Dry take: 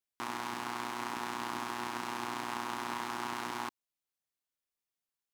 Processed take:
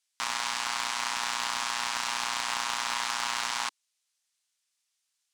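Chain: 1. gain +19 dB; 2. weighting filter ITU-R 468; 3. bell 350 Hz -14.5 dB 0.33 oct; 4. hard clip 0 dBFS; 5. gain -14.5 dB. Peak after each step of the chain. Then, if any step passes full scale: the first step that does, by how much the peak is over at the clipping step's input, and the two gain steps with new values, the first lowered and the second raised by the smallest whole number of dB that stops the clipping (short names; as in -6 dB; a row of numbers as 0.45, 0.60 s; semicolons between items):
-0.5, +6.5, +6.0, 0.0, -14.5 dBFS; step 2, 6.0 dB; step 1 +13 dB, step 5 -8.5 dB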